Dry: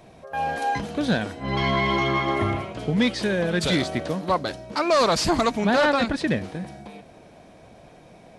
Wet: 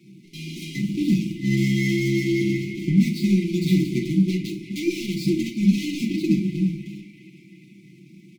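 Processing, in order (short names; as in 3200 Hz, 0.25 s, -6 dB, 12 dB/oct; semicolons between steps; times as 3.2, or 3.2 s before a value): median filter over 15 samples; HPF 130 Hz 24 dB/oct; comb 5.9 ms, depth 68%; compressor, threshold -22 dBFS, peak gain reduction 9 dB; in parallel at -4.5 dB: crossover distortion -38 dBFS; on the sum: brick-wall FIR band-stop 380–2000 Hz; on a send: narrowing echo 0.346 s, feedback 72%, band-pass 1700 Hz, level -10.5 dB; on the sum: shoebox room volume 380 m³, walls furnished, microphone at 1.4 m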